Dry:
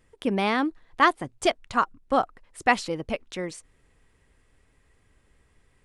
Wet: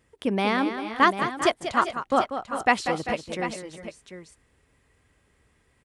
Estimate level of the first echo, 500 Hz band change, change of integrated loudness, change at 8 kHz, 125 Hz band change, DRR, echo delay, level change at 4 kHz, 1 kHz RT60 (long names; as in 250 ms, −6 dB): −9.5 dB, +1.0 dB, +1.0 dB, +1.0 dB, +1.0 dB, no reverb audible, 191 ms, +1.0 dB, no reverb audible